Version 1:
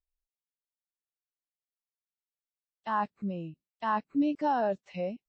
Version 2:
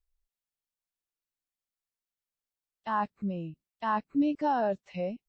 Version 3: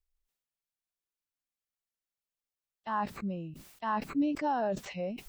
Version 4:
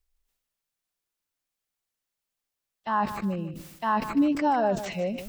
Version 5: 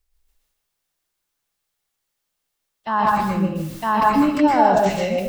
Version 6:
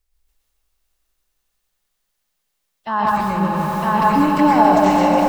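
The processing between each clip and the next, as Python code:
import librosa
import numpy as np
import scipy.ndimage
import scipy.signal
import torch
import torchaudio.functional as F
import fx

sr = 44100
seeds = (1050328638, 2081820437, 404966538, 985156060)

y1 = fx.low_shelf(x, sr, hz=73.0, db=11.0)
y2 = fx.sustainer(y1, sr, db_per_s=67.0)
y2 = y2 * librosa.db_to_amplitude(-3.0)
y3 = fx.echo_feedback(y2, sr, ms=151, feedback_pct=27, wet_db=-12.0)
y3 = y3 * librosa.db_to_amplitude(6.5)
y4 = fx.rev_plate(y3, sr, seeds[0], rt60_s=0.52, hf_ratio=0.8, predelay_ms=105, drr_db=-2.0)
y4 = y4 * librosa.db_to_amplitude(4.5)
y5 = fx.echo_swell(y4, sr, ms=91, loudest=5, wet_db=-10)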